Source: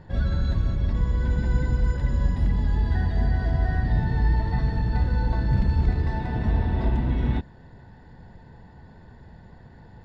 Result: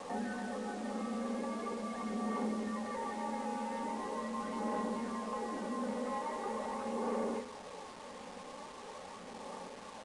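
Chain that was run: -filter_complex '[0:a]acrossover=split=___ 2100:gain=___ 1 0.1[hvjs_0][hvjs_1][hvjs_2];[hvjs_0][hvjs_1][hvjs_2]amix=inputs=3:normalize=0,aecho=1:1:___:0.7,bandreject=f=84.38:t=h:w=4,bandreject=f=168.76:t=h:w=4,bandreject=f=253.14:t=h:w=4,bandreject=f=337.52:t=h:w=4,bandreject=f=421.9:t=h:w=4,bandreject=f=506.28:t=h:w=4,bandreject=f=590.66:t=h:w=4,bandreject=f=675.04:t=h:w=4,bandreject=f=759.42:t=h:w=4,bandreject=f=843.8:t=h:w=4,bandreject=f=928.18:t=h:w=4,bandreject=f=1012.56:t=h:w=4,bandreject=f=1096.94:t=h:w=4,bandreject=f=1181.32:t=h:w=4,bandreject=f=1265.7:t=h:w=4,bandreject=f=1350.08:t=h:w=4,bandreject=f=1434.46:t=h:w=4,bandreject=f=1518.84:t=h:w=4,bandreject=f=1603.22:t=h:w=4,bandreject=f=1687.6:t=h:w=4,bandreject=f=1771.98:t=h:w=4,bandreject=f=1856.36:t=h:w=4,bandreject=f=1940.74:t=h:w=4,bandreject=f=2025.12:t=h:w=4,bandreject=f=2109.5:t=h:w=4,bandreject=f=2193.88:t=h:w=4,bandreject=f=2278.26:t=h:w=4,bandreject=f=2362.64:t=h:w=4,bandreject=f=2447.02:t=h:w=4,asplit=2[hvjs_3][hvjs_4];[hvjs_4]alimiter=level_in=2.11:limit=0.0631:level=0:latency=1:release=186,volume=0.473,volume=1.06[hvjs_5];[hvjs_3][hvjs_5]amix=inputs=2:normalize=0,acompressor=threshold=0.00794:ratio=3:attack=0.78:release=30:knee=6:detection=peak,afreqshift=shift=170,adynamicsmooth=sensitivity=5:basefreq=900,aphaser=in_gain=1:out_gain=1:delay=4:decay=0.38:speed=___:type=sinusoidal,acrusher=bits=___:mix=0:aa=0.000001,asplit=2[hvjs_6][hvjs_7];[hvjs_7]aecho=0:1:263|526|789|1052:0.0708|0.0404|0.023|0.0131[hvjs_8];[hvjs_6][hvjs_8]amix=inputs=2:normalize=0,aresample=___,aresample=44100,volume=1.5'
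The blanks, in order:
330, 0.0794, 3, 0.42, 8, 22050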